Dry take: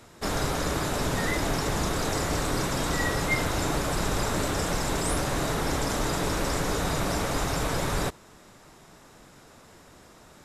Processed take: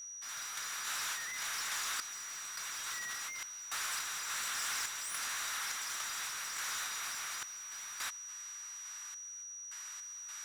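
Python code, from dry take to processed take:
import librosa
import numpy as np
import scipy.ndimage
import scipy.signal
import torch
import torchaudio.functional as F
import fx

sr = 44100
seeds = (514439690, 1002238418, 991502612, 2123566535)

y = scipy.signal.sosfilt(scipy.signal.butter(4, 1300.0, 'highpass', fs=sr, output='sos'), x)
y = np.clip(10.0 ** (32.5 / 20.0) * y, -1.0, 1.0) / 10.0 ** (32.5 / 20.0)
y = fx.tremolo_random(y, sr, seeds[0], hz=3.5, depth_pct=95)
y = fx.over_compress(y, sr, threshold_db=-43.0, ratio=-1.0)
y = y + 10.0 ** (-47.0 / 20.0) * np.sin(2.0 * np.pi * 5800.0 * np.arange(len(y)) / sr)
y = F.gain(torch.from_numpy(y), 3.0).numpy()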